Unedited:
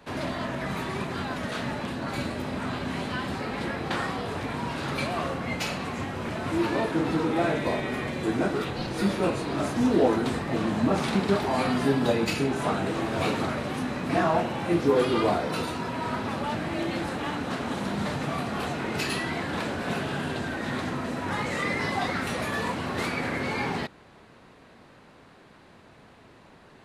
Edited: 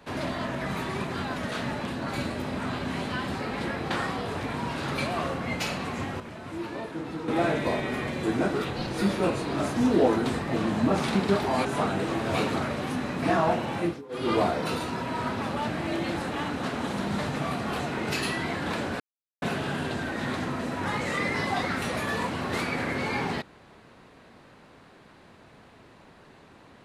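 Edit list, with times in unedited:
6.20–7.28 s: gain -9 dB
11.65–12.52 s: delete
14.65–15.20 s: dip -24 dB, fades 0.24 s
19.87 s: insert silence 0.42 s

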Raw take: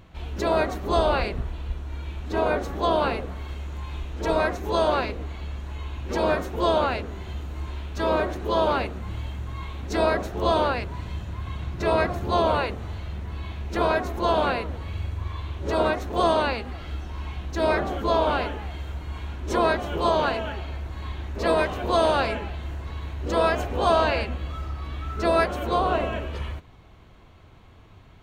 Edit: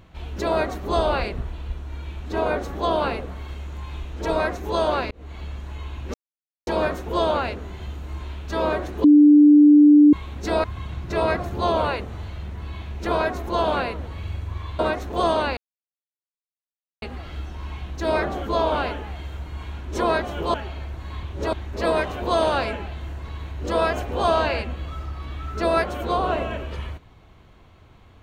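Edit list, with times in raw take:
5.11–5.39 s: fade in
6.14 s: insert silence 0.53 s
8.51–9.60 s: bleep 295 Hz -8 dBFS
10.11–11.34 s: delete
15.49–15.79 s: move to 21.15 s
16.57 s: insert silence 1.45 s
20.09–20.46 s: delete

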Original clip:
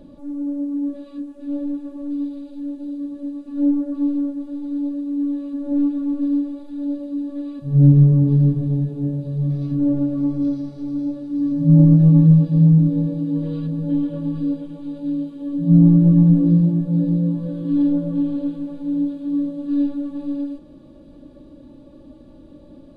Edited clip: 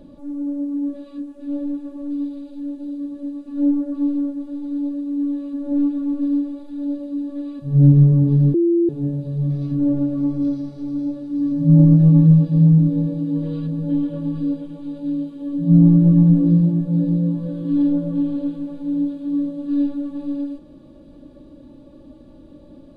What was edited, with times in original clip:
8.54–8.89 s: bleep 341 Hz -13 dBFS

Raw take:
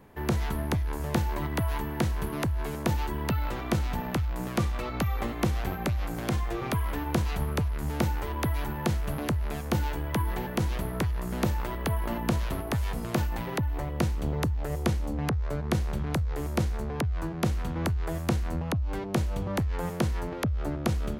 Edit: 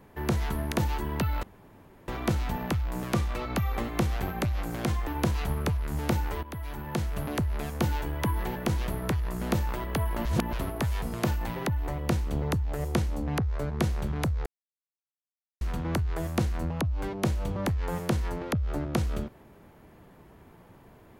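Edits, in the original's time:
0.72–2.81 s: delete
3.52 s: insert room tone 0.65 s
6.51–6.98 s: delete
8.34–9.48 s: fade in equal-power, from -14 dB
12.16–12.44 s: reverse
16.37–17.52 s: mute

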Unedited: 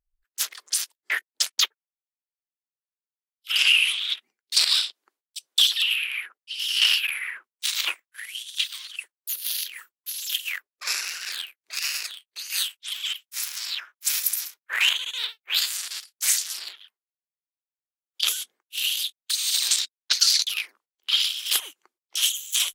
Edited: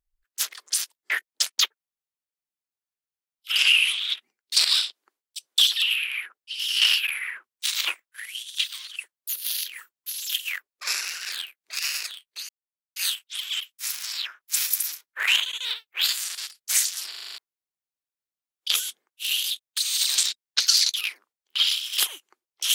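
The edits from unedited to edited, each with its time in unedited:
12.49 s: insert silence 0.47 s
16.63 s: stutter in place 0.04 s, 7 plays

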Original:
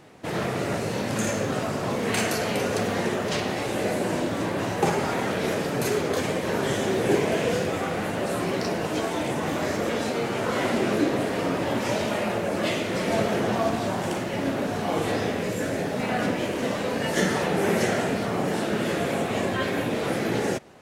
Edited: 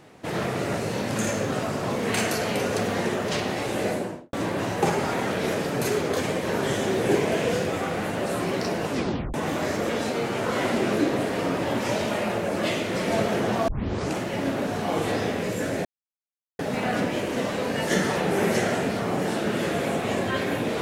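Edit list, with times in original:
3.86–4.33 s: studio fade out
8.89 s: tape stop 0.45 s
13.68 s: tape start 0.49 s
15.85 s: insert silence 0.74 s

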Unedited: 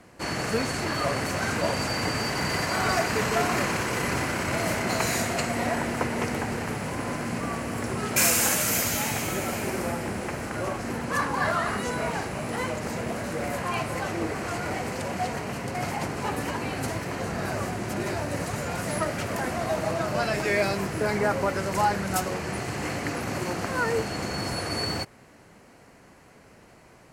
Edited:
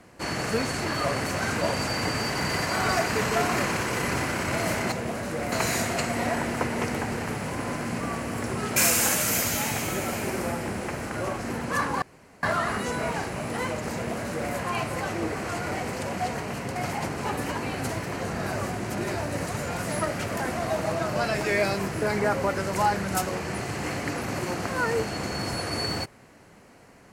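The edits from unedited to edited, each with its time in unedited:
11.42 s: insert room tone 0.41 s
12.93–13.53 s: copy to 4.92 s

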